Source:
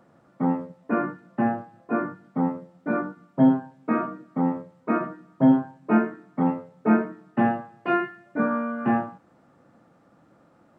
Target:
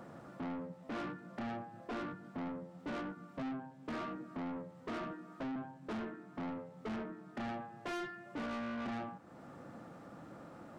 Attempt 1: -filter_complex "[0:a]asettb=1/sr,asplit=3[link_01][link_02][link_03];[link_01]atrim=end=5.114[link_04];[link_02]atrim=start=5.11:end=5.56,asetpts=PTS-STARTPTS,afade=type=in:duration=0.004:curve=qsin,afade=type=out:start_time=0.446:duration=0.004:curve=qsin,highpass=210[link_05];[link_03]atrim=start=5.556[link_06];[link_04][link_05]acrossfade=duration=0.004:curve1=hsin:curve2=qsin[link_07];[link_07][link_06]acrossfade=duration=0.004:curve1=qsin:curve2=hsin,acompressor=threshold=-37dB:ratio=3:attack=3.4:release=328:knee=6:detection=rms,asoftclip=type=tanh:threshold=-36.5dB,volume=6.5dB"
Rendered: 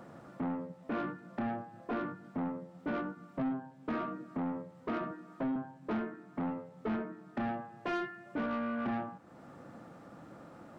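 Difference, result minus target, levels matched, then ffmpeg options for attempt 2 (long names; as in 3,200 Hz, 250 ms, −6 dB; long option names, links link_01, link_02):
soft clipping: distortion −6 dB
-filter_complex "[0:a]asettb=1/sr,asplit=3[link_01][link_02][link_03];[link_01]atrim=end=5.114[link_04];[link_02]atrim=start=5.11:end=5.56,asetpts=PTS-STARTPTS,afade=type=in:duration=0.004:curve=qsin,afade=type=out:start_time=0.446:duration=0.004:curve=qsin,highpass=210[link_05];[link_03]atrim=start=5.556[link_06];[link_04][link_05]acrossfade=duration=0.004:curve1=hsin:curve2=qsin[link_07];[link_07][link_06]acrossfade=duration=0.004:curve1=qsin:curve2=hsin,acompressor=threshold=-37dB:ratio=3:attack=3.4:release=328:knee=6:detection=rms,asoftclip=type=tanh:threshold=-44.5dB,volume=6.5dB"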